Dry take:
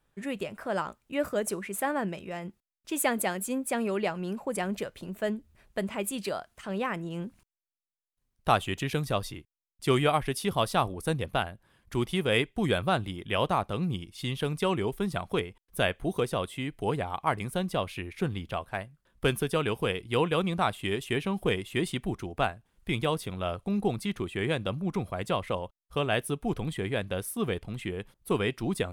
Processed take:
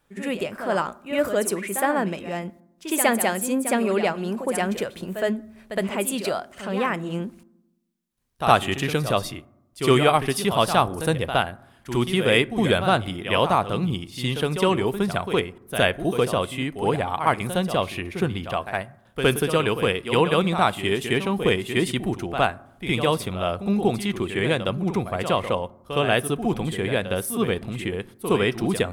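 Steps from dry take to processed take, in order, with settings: low shelf 76 Hz -8.5 dB; reverse echo 64 ms -9.5 dB; on a send at -19.5 dB: reverb RT60 0.90 s, pre-delay 4 ms; on the sum: gain +7 dB

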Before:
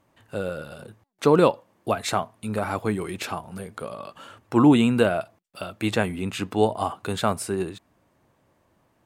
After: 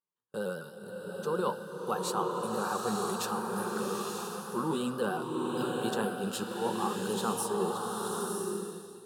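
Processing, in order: repeated pitch sweeps +1.5 st, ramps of 0.152 s; HPF 180 Hz 12 dB/oct; high shelf 12000 Hz +6.5 dB; fixed phaser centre 430 Hz, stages 8; gate -46 dBFS, range -31 dB; reverse; compressor, threshold -29 dBFS, peak gain reduction 13 dB; reverse; bloom reverb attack 0.96 s, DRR -0.5 dB

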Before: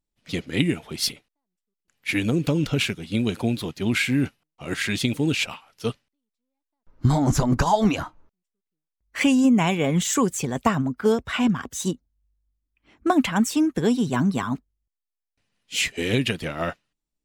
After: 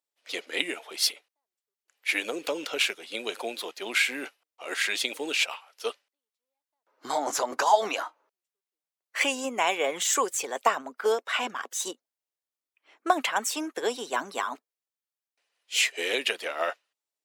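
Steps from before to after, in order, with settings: HPF 460 Hz 24 dB/oct

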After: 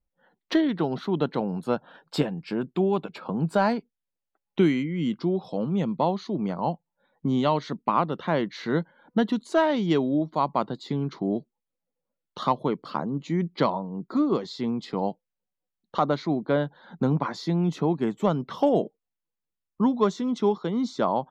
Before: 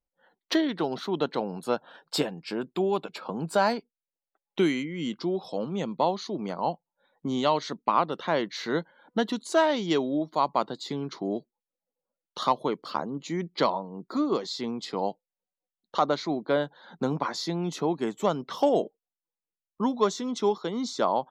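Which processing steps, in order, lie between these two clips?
tone controls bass +10 dB, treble -9 dB

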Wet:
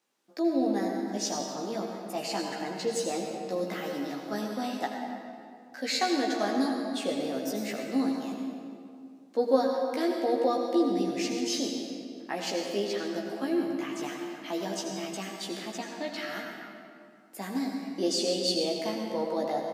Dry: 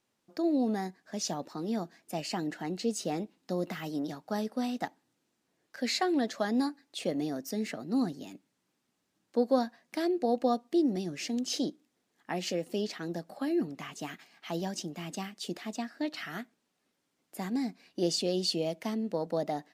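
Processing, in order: HPF 270 Hz 12 dB/oct; doubler 15 ms -3 dB; on a send: reverb RT60 2.3 s, pre-delay 75 ms, DRR 1.5 dB

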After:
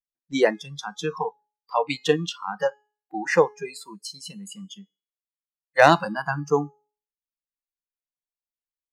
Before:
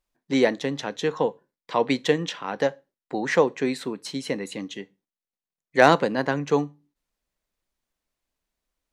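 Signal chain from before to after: spectral noise reduction 29 dB; resonator 420 Hz, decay 0.43 s, mix 40%; gain +6 dB

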